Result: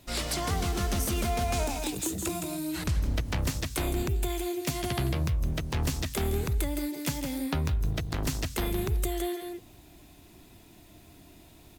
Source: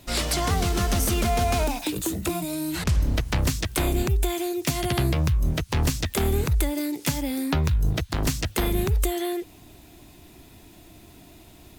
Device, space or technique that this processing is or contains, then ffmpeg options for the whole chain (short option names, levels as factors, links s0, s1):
ducked delay: -filter_complex "[0:a]asettb=1/sr,asplit=3[s0][s1][s2];[s0]atrim=end=1.534[s3];[s1]atrim=start=1.53:end=2.44,asetpts=PTS-STARTPTS,afade=t=in:d=0.004:c=qsin,afade=t=out:st=0.906:d=0.004:c=qsin,equalizer=f=7200:w=1.3:g=6[s4];[s2]atrim=start=2.436[s5];[s3][s4]acrossfade=d=0.004:c1=hsin:c2=qsin[s6];[s6][s5]acrossfade=d=0.004:c1=qsin:c2=hsin,asplit=3[s7][s8][s9];[s8]adelay=164,volume=0.631[s10];[s9]apad=whole_len=527148[s11];[s10][s11]sidechaincompress=threshold=0.0398:ratio=5:attack=16:release=173[s12];[s7][s12]amix=inputs=2:normalize=0,volume=0.501"